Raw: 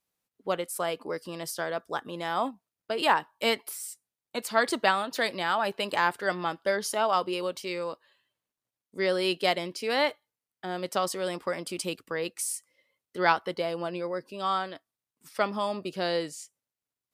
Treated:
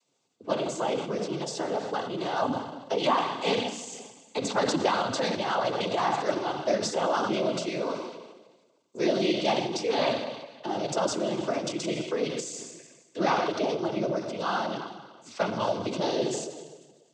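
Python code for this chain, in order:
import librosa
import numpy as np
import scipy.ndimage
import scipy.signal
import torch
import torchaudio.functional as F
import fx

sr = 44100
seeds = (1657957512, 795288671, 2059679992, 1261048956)

y = fx.octave_divider(x, sr, octaves=1, level_db=2.0)
y = fx.low_shelf(y, sr, hz=370.0, db=8.0)
y = fx.rev_schroeder(y, sr, rt60_s=1.1, comb_ms=26, drr_db=9.0)
y = fx.transient(y, sr, attack_db=-1, sustain_db=8)
y = scipy.signal.sosfilt(scipy.signal.butter(2, 290.0, 'highpass', fs=sr, output='sos'), y)
y = fx.peak_eq(y, sr, hz=1700.0, db=-11.0, octaves=0.58)
y = fx.noise_vocoder(y, sr, seeds[0], bands=16)
y = fx.band_squash(y, sr, depth_pct=40)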